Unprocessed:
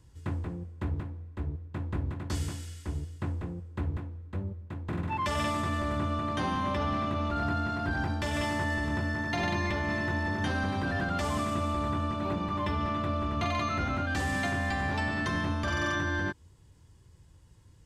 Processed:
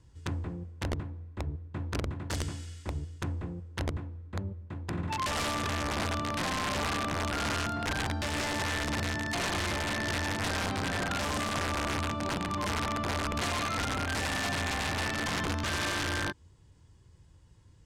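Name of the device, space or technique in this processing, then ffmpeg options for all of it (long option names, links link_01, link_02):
overflowing digital effects unit: -af "aeval=exprs='(mod(15*val(0)+1,2)-1)/15':channel_layout=same,lowpass=8600,volume=-1dB"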